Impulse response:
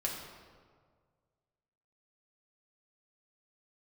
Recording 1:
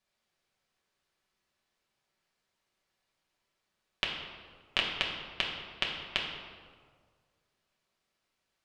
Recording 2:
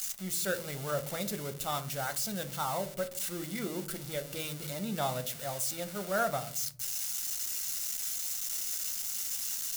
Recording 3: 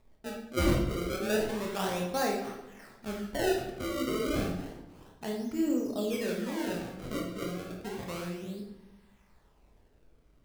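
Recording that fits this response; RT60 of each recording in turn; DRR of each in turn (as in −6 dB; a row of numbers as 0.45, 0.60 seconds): 1; 1.8, 0.50, 0.95 seconds; −3.0, 7.5, −1.0 decibels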